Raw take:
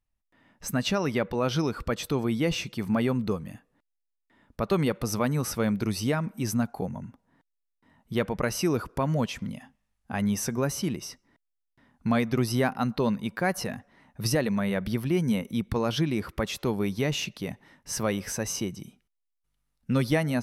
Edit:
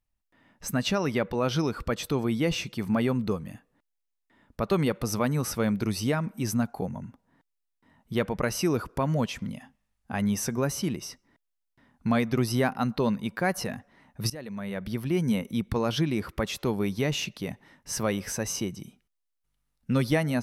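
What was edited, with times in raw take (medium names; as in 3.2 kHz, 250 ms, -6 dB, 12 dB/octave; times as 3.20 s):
14.30–15.26 s: fade in, from -19.5 dB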